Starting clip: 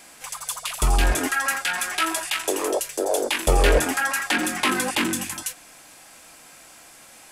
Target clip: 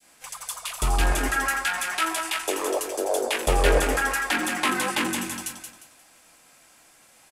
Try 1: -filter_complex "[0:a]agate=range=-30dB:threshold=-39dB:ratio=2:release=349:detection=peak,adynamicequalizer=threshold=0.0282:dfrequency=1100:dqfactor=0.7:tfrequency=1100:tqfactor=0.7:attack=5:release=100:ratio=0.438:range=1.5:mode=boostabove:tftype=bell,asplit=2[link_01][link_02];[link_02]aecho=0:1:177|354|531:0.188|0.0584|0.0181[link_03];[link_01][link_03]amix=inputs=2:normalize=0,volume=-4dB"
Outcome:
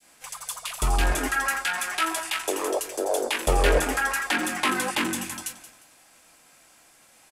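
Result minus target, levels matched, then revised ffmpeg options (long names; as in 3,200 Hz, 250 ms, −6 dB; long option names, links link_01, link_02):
echo-to-direct −7.5 dB
-filter_complex "[0:a]agate=range=-30dB:threshold=-39dB:ratio=2:release=349:detection=peak,adynamicequalizer=threshold=0.0282:dfrequency=1100:dqfactor=0.7:tfrequency=1100:tqfactor=0.7:attack=5:release=100:ratio=0.438:range=1.5:mode=boostabove:tftype=bell,asplit=2[link_01][link_02];[link_02]aecho=0:1:177|354|531|708:0.447|0.138|0.0429|0.0133[link_03];[link_01][link_03]amix=inputs=2:normalize=0,volume=-4dB"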